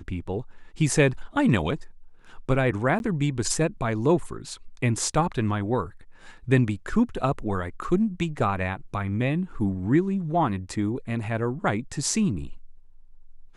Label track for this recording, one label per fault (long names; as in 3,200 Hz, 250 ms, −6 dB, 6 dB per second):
2.990000	3.000000	drop-out 11 ms